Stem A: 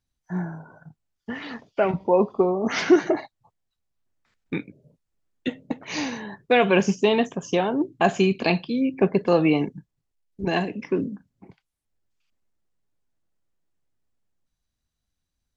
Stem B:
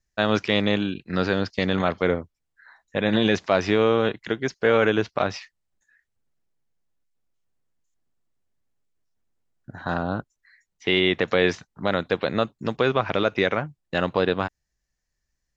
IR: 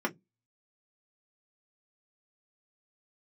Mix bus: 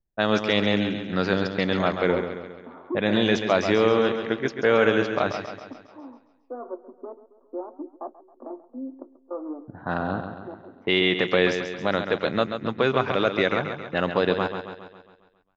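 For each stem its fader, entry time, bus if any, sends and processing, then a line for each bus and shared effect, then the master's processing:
−16.5 dB, 0.00 s, send −10.5 dB, echo send −12.5 dB, hard clipping −14.5 dBFS, distortion −13 dB; gate pattern "x.xxx...xx" 158 BPM −24 dB; Chebyshev band-pass filter 250–1,300 Hz, order 5
−0.5 dB, 0.00 s, no send, echo send −8 dB, low-pass that shuts in the quiet parts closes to 660 Hz, open at −17 dBFS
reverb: on, RT60 0.15 s, pre-delay 3 ms
echo: repeating echo 136 ms, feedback 53%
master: parametric band 61 Hz −5.5 dB 1.7 octaves

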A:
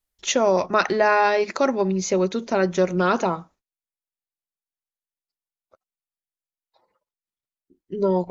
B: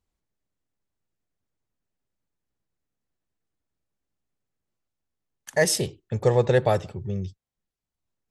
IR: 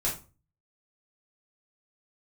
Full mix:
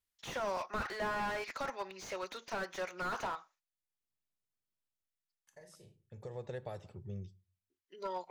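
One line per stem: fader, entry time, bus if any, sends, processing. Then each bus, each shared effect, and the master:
−3.0 dB, 0.00 s, no send, high-pass filter 1,300 Hz 12 dB per octave; high-shelf EQ 4,800 Hz −3.5 dB
−15.0 dB, 0.00 s, send −24 dB, downward compressor 10 to 1, threshold −24 dBFS, peak gain reduction 10.5 dB; automatic ducking −24 dB, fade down 0.70 s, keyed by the first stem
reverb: on, RT60 0.35 s, pre-delay 6 ms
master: slew-rate limiting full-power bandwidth 21 Hz

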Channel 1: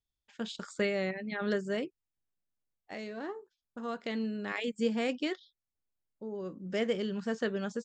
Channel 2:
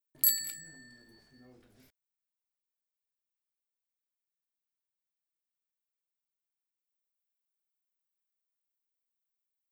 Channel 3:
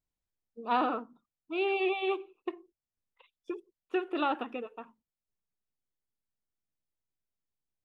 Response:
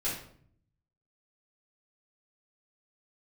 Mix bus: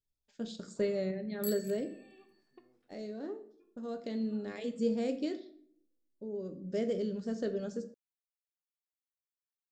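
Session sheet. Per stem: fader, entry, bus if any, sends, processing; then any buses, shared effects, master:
−2.5 dB, 0.00 s, send −11.5 dB, flat-topped bell 1,600 Hz −12 dB 2.3 octaves
−11.5 dB, 1.20 s, no send, Bessel high-pass filter 170 Hz; every ending faded ahead of time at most 210 dB per second
−19.0 dB, 0.10 s, send −17.5 dB, downward compressor, threshold −34 dBFS, peak gain reduction 11 dB; automatic ducking −13 dB, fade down 0.25 s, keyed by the first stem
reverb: on, RT60 0.60 s, pre-delay 3 ms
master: high-shelf EQ 5,700 Hz −5 dB

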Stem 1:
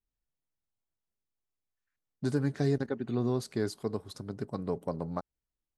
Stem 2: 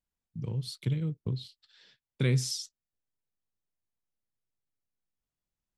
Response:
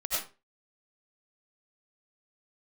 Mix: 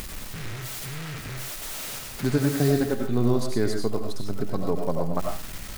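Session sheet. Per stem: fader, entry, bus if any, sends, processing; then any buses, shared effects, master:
+2.5 dB, 0.00 s, send −4.5 dB, no processing
−1.5 dB, 0.00 s, send −8 dB, sign of each sample alone; short delay modulated by noise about 1,700 Hz, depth 0.35 ms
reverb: on, RT60 0.30 s, pre-delay 55 ms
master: upward compression, threshold −33 dBFS

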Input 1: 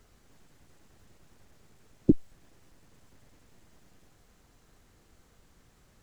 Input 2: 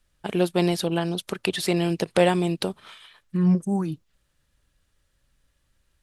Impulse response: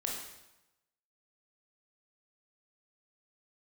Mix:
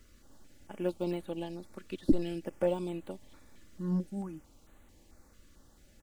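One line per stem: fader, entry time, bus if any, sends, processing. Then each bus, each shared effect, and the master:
+1.0 dB, 0.00 s, no send, brickwall limiter −16 dBFS, peak gain reduction 8 dB
−9.0 dB, 0.45 s, no send, de-essing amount 100%; expander for the loud parts 1.5 to 1, over −31 dBFS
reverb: not used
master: comb filter 3.5 ms, depth 47%; notch on a step sequencer 4.5 Hz 800–5,200 Hz

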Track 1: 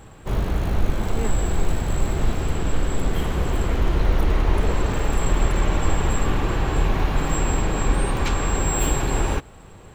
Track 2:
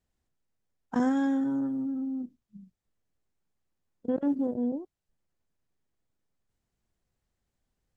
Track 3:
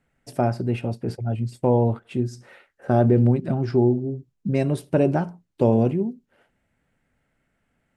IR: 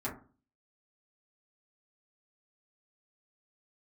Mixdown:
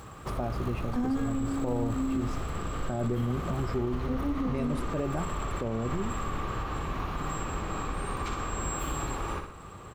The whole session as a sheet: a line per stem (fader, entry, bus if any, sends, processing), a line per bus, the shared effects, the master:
−1.5 dB, 0.00 s, bus A, no send, echo send −16.5 dB, parametric band 1,200 Hz +13.5 dB 0.24 octaves
+3.0 dB, 0.00 s, bus A, send −18 dB, no echo send, upward compression, threshold −43 dBFS
−7.5 dB, 0.00 s, no bus, no send, no echo send, no processing
bus A: 0.0 dB, high-pass filter 46 Hz 12 dB per octave; downward compressor 4 to 1, threshold −33 dBFS, peak gain reduction 14.5 dB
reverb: on, RT60 0.40 s, pre-delay 4 ms
echo: repeating echo 61 ms, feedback 50%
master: brickwall limiter −21.5 dBFS, peak gain reduction 9 dB

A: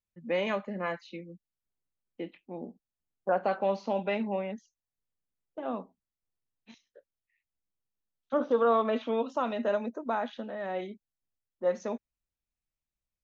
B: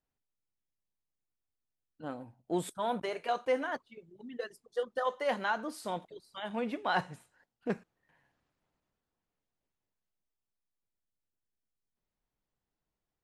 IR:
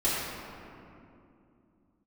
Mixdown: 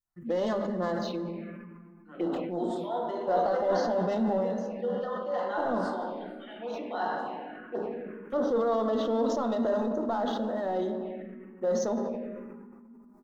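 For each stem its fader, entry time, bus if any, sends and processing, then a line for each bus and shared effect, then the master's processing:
+1.0 dB, 0.00 s, send −18 dB, mains-hum notches 50/100/150/200 Hz; brickwall limiter −23.5 dBFS, peak gain reduction 8 dB; leveller curve on the samples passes 1
−0.5 dB, 0.05 s, send −8.5 dB, three-way crossover with the lows and the highs turned down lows −21 dB, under 290 Hz, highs −14 dB, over 4,000 Hz; two-band tremolo in antiphase 6.1 Hz, depth 50%, crossover 620 Hz; automatic ducking −6 dB, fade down 0.70 s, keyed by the first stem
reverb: on, RT60 2.7 s, pre-delay 3 ms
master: phaser swept by the level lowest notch 470 Hz, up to 2,400 Hz, full sweep at −30 dBFS; level that may fall only so fast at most 28 dB per second

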